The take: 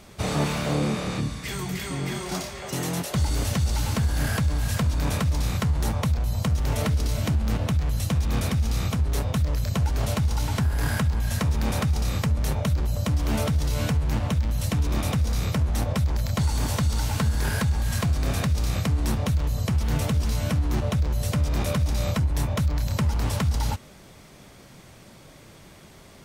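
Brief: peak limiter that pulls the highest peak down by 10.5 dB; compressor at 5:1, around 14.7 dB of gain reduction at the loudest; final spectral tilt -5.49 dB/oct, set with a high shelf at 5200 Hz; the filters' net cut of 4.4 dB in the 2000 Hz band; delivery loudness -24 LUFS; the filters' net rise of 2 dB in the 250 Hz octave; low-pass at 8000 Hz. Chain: LPF 8000 Hz; bell 250 Hz +3 dB; bell 2000 Hz -6.5 dB; high shelf 5200 Hz +5 dB; compressor 5:1, threshold -36 dBFS; gain +18.5 dB; limiter -15 dBFS

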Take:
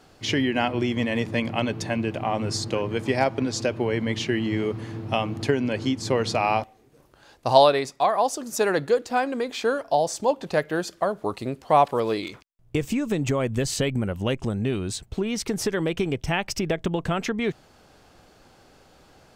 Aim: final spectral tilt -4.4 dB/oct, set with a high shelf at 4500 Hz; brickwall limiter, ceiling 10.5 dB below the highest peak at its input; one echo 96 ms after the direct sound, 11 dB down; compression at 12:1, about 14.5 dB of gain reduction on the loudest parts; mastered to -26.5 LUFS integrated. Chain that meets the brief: high shelf 4500 Hz +4.5 dB; compressor 12:1, threshold -24 dBFS; limiter -22 dBFS; echo 96 ms -11 dB; gain +5.5 dB

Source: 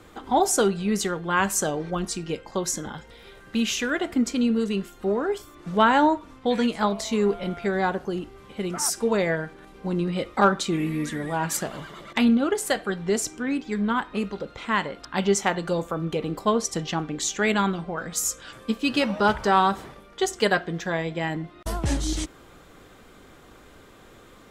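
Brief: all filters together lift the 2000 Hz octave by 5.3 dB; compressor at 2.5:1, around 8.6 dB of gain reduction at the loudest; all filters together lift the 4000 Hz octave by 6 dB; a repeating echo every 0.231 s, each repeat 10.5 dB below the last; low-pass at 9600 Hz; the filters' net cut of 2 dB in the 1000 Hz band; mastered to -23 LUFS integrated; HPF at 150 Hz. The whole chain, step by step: HPF 150 Hz; LPF 9600 Hz; bell 1000 Hz -5 dB; bell 2000 Hz +7.5 dB; bell 4000 Hz +5.5 dB; compressor 2.5:1, threshold -28 dBFS; feedback echo 0.231 s, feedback 30%, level -10.5 dB; gain +7 dB

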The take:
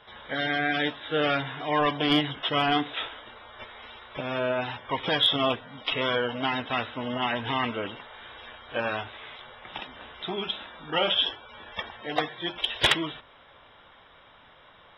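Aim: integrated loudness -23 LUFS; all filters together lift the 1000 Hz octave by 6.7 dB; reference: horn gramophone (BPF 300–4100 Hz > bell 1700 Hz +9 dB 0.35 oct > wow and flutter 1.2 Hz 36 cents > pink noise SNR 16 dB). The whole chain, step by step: BPF 300–4100 Hz; bell 1000 Hz +8 dB; bell 1700 Hz +9 dB 0.35 oct; wow and flutter 1.2 Hz 36 cents; pink noise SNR 16 dB; gain +1 dB

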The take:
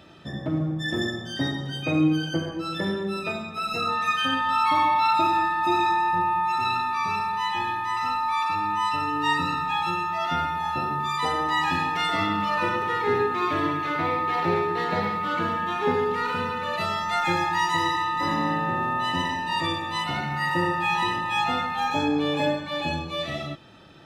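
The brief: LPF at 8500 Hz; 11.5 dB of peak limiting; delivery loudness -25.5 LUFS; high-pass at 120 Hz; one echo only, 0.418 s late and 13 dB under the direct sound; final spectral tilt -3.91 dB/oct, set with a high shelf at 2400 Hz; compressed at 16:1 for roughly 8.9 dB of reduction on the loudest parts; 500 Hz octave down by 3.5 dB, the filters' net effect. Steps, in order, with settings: HPF 120 Hz; LPF 8500 Hz; bell 500 Hz -5 dB; high shelf 2400 Hz +7 dB; compressor 16:1, threshold -26 dBFS; limiter -29 dBFS; echo 0.418 s -13 dB; gain +10.5 dB

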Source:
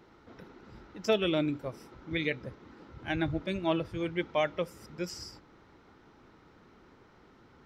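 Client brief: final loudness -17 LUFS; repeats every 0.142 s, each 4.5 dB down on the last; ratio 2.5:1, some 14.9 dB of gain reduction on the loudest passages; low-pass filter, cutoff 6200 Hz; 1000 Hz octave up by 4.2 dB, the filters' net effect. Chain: LPF 6200 Hz; bell 1000 Hz +5.5 dB; compressor 2.5:1, threshold -44 dBFS; feedback echo 0.142 s, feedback 60%, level -4.5 dB; gain +25.5 dB

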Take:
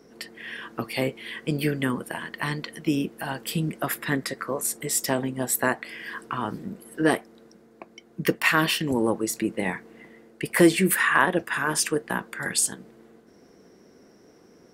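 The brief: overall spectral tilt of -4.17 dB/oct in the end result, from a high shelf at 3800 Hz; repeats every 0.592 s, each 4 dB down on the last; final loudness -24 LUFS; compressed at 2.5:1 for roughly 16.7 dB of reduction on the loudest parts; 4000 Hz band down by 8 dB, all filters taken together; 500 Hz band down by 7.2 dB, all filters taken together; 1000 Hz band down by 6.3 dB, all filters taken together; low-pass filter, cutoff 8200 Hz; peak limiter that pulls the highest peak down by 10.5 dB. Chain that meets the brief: LPF 8200 Hz; bell 500 Hz -9 dB; bell 1000 Hz -4.5 dB; high shelf 3800 Hz -6.5 dB; bell 4000 Hz -6.5 dB; compressor 2.5:1, threshold -42 dBFS; limiter -33.5 dBFS; feedback echo 0.592 s, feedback 63%, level -4 dB; gain +19 dB

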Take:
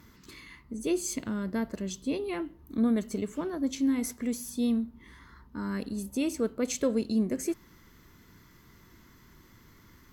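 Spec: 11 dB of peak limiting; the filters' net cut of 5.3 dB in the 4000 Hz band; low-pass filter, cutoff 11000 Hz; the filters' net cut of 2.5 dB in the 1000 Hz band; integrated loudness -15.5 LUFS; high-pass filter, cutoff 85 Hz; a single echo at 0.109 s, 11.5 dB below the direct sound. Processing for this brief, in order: HPF 85 Hz; LPF 11000 Hz; bell 1000 Hz -3 dB; bell 4000 Hz -6.5 dB; limiter -27.5 dBFS; echo 0.109 s -11.5 dB; gain +20.5 dB

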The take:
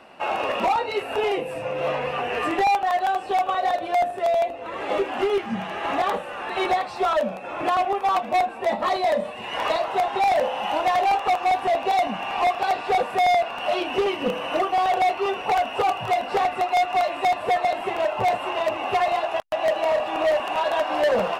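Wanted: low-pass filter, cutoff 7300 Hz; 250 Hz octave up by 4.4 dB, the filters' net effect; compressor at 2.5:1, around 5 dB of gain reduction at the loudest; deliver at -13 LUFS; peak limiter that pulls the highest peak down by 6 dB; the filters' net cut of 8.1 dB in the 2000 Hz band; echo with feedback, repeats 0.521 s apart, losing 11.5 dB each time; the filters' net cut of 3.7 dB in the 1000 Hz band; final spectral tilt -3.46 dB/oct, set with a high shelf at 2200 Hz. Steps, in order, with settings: LPF 7300 Hz; bell 250 Hz +7 dB; bell 1000 Hz -5 dB; bell 2000 Hz -7 dB; high shelf 2200 Hz -3.5 dB; compressor 2.5:1, threshold -25 dBFS; limiter -22.5 dBFS; feedback echo 0.521 s, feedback 27%, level -11.5 dB; gain +17.5 dB

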